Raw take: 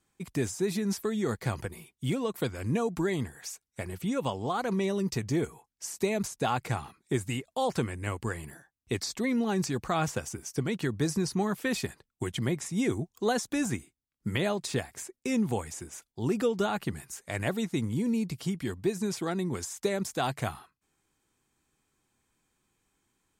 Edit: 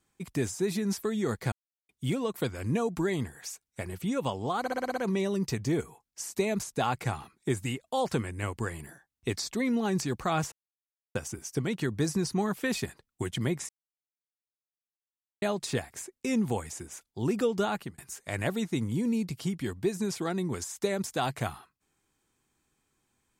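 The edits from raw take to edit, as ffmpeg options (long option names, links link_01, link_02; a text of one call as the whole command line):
ffmpeg -i in.wav -filter_complex "[0:a]asplit=13[link_01][link_02][link_03][link_04][link_05][link_06][link_07][link_08][link_09][link_10][link_11][link_12][link_13];[link_01]atrim=end=1.52,asetpts=PTS-STARTPTS,afade=type=out:start_time=1.516:duration=0.004:curve=hsin[link_14];[link_02]atrim=start=1.52:end=1.89,asetpts=PTS-STARTPTS,volume=0[link_15];[link_03]atrim=start=1.89:end=4.662,asetpts=PTS-STARTPTS,afade=type=in:duration=0.004:curve=hsin[link_16];[link_04]atrim=start=4.598:end=4.662[link_17];[link_05]atrim=start=4.598:end=4.662[link_18];[link_06]atrim=start=4.598:end=4.662[link_19];[link_07]atrim=start=4.598:end=4.662[link_20];[link_08]atrim=start=4.598:end=4.662[link_21];[link_09]atrim=start=4.598:end=10.16,asetpts=PTS-STARTPTS,afade=type=out:start_time=5.558:duration=0.004:curve=hsin,apad=pad_dur=0.63[link_22];[link_10]atrim=start=10.16:end=12.7,asetpts=PTS-STARTPTS,afade=type=in:duration=0.004:curve=hsin,afade=type=out:start_time=2.536:duration=0.004:curve=hsin[link_23];[link_11]atrim=start=12.7:end=14.43,asetpts=PTS-STARTPTS,volume=0[link_24];[link_12]atrim=start=14.43:end=16.99,asetpts=PTS-STARTPTS,afade=type=in:duration=0.004:curve=hsin,afade=type=out:start_time=2.31:duration=0.25[link_25];[link_13]atrim=start=16.99,asetpts=PTS-STARTPTS,afade=type=in:duration=0.004:curve=hsin[link_26];[link_14][link_15][link_16]concat=n=3:v=0:a=1[link_27];[link_27][link_17]acrossfade=duration=0.004:curve1=hsin:curve2=hsin[link_28];[link_28][link_18]acrossfade=duration=0.004:curve1=hsin:curve2=hsin[link_29];[link_29][link_19]acrossfade=duration=0.004:curve1=hsin:curve2=hsin[link_30];[link_30][link_20]acrossfade=duration=0.004:curve1=hsin:curve2=hsin[link_31];[link_31][link_21]acrossfade=duration=0.004:curve1=hsin:curve2=hsin[link_32];[link_22][link_23][link_24][link_25][link_26]concat=n=5:v=0:a=1[link_33];[link_32][link_33]acrossfade=duration=0.004:curve1=hsin:curve2=hsin" out.wav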